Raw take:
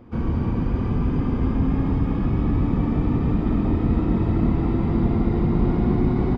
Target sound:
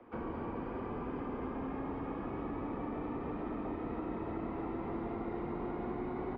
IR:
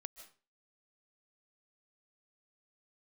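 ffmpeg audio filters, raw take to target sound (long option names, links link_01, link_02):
-filter_complex "[0:a]acrossover=split=340 3000:gain=0.112 1 0.0631[link_01][link_02][link_03];[link_01][link_02][link_03]amix=inputs=3:normalize=0,acrossover=split=110|230|1100[link_04][link_05][link_06][link_07];[link_04]acompressor=threshold=-46dB:ratio=4[link_08];[link_05]acompressor=threshold=-46dB:ratio=4[link_09];[link_06]acompressor=threshold=-37dB:ratio=4[link_10];[link_07]acompressor=threshold=-51dB:ratio=4[link_11];[link_08][link_09][link_10][link_11]amix=inputs=4:normalize=0,volume=-2dB"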